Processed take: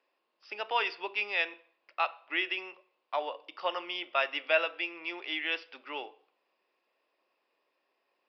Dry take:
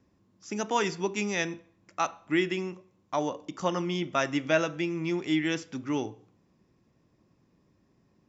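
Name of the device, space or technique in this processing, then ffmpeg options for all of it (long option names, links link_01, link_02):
musical greeting card: -af "aresample=11025,aresample=44100,highpass=frequency=510:width=0.5412,highpass=frequency=510:width=1.3066,equalizer=frequency=2700:width_type=o:width=0.38:gain=8.5,volume=-2dB"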